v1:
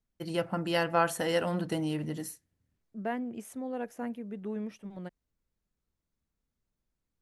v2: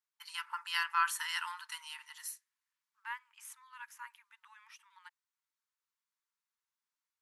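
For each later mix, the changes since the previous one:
master: add brick-wall FIR high-pass 870 Hz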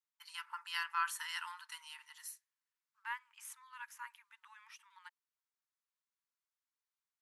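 first voice -5.0 dB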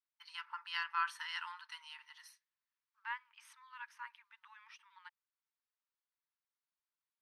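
master: add polynomial smoothing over 15 samples

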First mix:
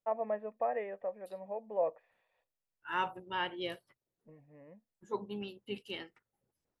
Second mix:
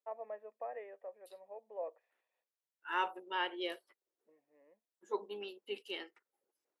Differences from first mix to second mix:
first voice -9.0 dB; master: add Chebyshev high-pass 350 Hz, order 3

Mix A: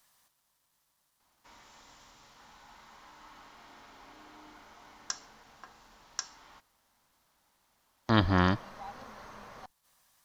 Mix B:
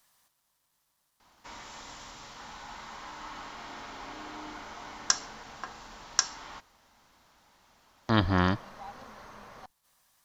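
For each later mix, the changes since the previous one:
background +11.0 dB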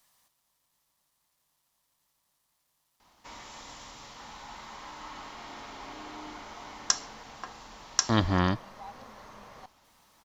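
background: entry +1.80 s; master: add bell 1500 Hz -4.5 dB 0.34 oct

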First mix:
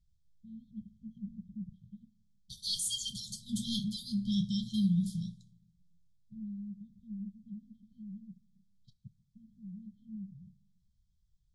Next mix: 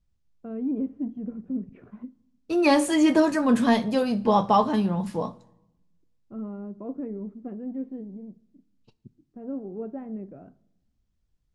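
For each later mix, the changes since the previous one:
master: remove brick-wall FIR band-stop 210–3100 Hz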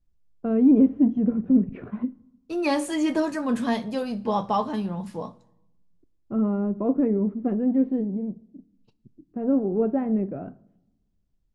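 first voice +11.5 dB; second voice -4.5 dB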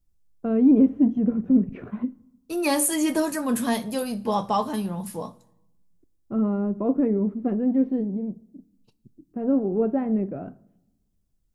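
master: remove air absorption 110 m

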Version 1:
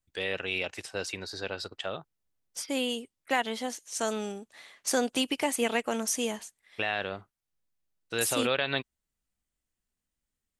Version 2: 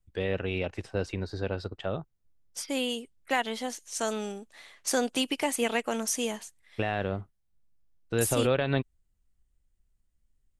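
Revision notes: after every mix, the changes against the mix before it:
first voice: add tilt -4 dB/oct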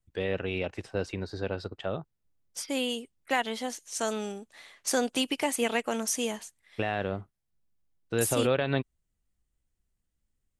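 first voice: add low shelf 65 Hz -10 dB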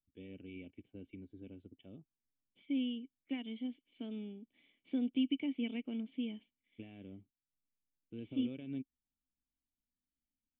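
first voice -7.0 dB; master: add vocal tract filter i

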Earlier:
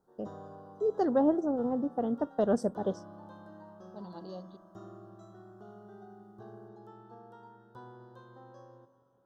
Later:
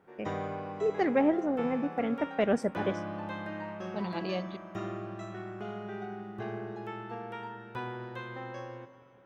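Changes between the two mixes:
second voice +9.5 dB; background +11.0 dB; master: remove Butterworth band-stop 2300 Hz, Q 0.91

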